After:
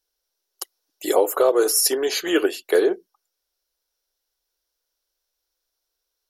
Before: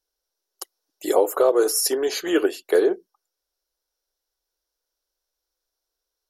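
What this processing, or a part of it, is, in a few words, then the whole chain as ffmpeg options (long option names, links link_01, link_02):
presence and air boost: -af "equalizer=frequency=2800:width_type=o:width=1.7:gain=4.5,highshelf=frequency=10000:gain=6"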